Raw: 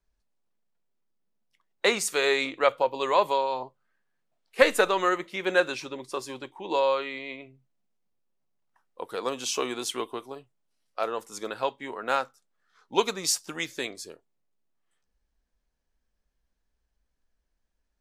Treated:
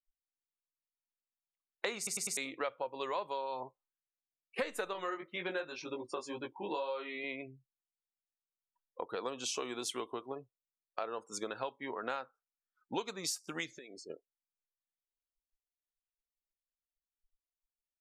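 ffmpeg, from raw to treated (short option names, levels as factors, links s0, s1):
-filter_complex "[0:a]asettb=1/sr,asplit=3[s0][s1][s2];[s0]atrim=end=4.934[s3];[s1]atrim=start=4.93:end=7.24,asetpts=PTS-STARTPTS,afade=t=in:d=0.004:c=qsin,afade=t=out:st=2.306:d=0.004:c=qsin,flanger=delay=17:depth=2.8:speed=2[s4];[s2]atrim=start=7.236[s5];[s3][s4]acrossfade=d=0.004:c1=hsin:c2=qsin[s6];[s6][s5]acrossfade=d=0.004:c1=qsin:c2=hsin,asettb=1/sr,asplit=3[s7][s8][s9];[s7]atrim=end=13.694[s10];[s8]atrim=start=13.69:end=14.1,asetpts=PTS-STARTPTS,afade=t=in:d=0.004:c=qsin,afade=t=out:st=0.406:d=0.004:c=qsin,acompressor=threshold=0.00631:ratio=12:attack=3.2:release=140:knee=1:detection=peak[s11];[s9]atrim=start=14.096[s12];[s10][s11]acrossfade=d=0.004:c1=hsin:c2=qsin[s13];[s13][s12]acrossfade=d=0.004:c1=qsin:c2=hsin,asplit=5[s14][s15][s16][s17][s18];[s14]atrim=end=2.072[s19];[s15]atrim=start=1.968:end=2.072[s20];[s16]atrim=start=1.968:end=2.072[s21];[s17]atrim=start=1.968:end=2.072[s22];[s18]atrim=start=2.368[s23];[s19][s20]acrossfade=d=0.004:c1=hsin:c2=hsin[s24];[s24][s21]acrossfade=d=0.004:c1=hsin:c2=hsin[s25];[s25][s22]acrossfade=d=0.004:c1=hsin:c2=hsin[s26];[s26][s23]acrossfade=d=0.004:c1=hsin:c2=hsin,afftdn=nr=35:nf=-47,acompressor=threshold=0.0126:ratio=5,volume=1.26"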